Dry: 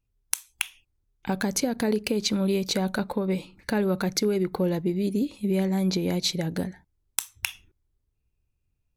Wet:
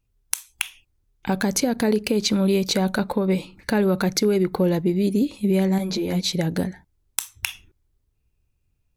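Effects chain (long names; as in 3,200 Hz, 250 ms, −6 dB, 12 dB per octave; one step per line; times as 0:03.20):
in parallel at −1.5 dB: brickwall limiter −18 dBFS, peak gain reduction 11 dB
0:05.78–0:06.32: on the sum: string-ensemble chorus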